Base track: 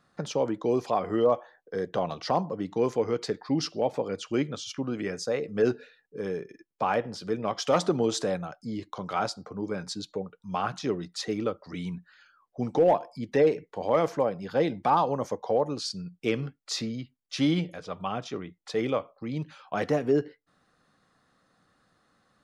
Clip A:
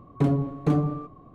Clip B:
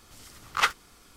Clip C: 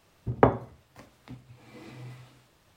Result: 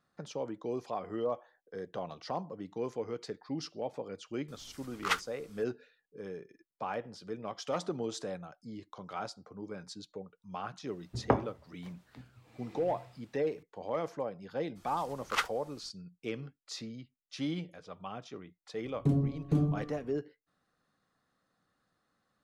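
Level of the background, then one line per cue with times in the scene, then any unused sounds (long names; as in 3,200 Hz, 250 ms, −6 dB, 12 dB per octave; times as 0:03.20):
base track −10.5 dB
0:04.48: mix in B −7 dB
0:10.87: mix in C −7 dB
0:14.75: mix in B −7.5 dB, fades 0.02 s
0:18.85: mix in A −3.5 dB + parametric band 1,400 Hz −13 dB 2.9 octaves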